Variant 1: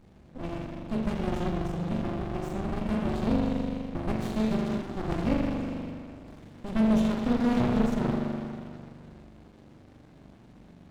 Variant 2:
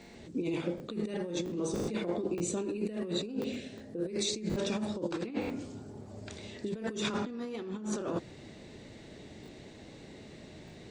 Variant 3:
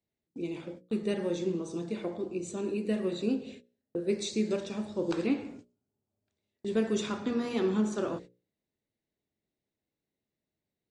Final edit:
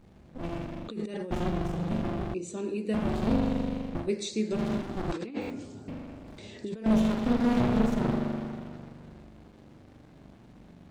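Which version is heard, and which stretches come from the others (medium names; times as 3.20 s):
1
0.88–1.31 s: from 2
2.34–2.94 s: from 3
4.05–4.56 s: from 3, crossfade 0.10 s
5.12–5.88 s: from 2
6.38–6.86 s: from 2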